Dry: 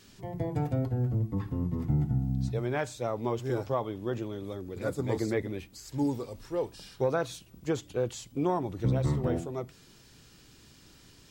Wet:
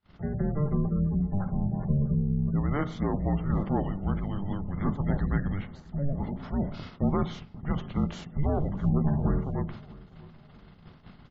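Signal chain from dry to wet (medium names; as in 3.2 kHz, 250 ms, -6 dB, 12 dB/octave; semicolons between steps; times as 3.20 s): spectral levelling over time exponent 0.6; low-pass 3.8 kHz 12 dB/octave; de-hum 79.69 Hz, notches 12; gate -40 dBFS, range -40 dB; spectral gate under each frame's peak -30 dB strong; frequency shift -290 Hz; on a send: feedback delay 648 ms, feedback 43%, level -22 dB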